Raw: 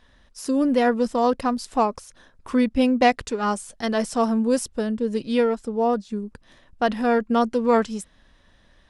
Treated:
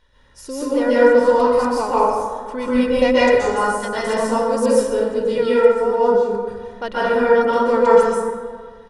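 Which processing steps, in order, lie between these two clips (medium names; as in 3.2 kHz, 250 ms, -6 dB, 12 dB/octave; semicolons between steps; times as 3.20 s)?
comb 2.1 ms, depth 52%; plate-style reverb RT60 1.7 s, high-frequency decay 0.4×, pre-delay 115 ms, DRR -9.5 dB; trim -5 dB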